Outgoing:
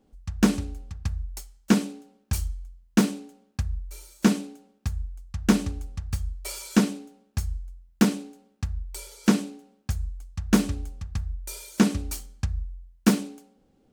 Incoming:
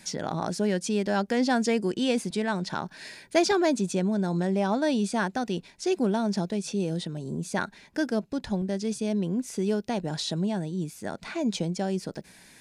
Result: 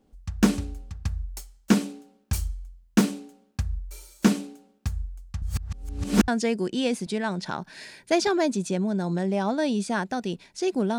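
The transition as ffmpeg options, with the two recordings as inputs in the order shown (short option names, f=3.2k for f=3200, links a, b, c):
-filter_complex "[0:a]apad=whole_dur=10.98,atrim=end=10.98,asplit=2[a][b];[a]atrim=end=5.422[c];[b]atrim=start=5.418:end=6.282,asetpts=PTS-STARTPTS,areverse[d];[1:a]atrim=start=1.518:end=6.22[e];[c][d]acrossfade=d=0.004:c1=hsin:c2=hsin[f];[f][e]acrossfade=d=0.004:c1=hsin:c2=hsin"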